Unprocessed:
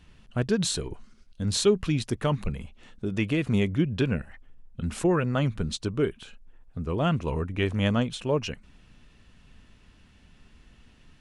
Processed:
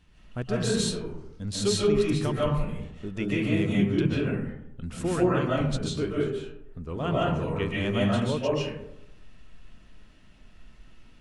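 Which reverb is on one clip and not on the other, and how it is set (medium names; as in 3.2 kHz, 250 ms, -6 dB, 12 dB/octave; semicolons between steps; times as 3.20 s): algorithmic reverb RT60 0.82 s, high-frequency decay 0.4×, pre-delay 105 ms, DRR -6 dB; trim -6 dB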